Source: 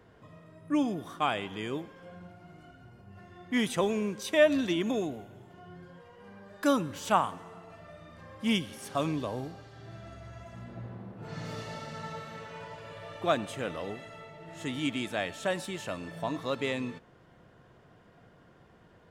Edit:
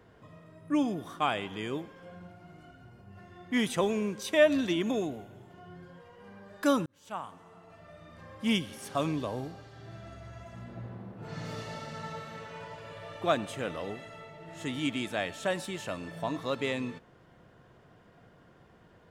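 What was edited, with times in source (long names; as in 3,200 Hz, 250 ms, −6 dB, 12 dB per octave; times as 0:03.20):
0:06.86–0:08.22: fade in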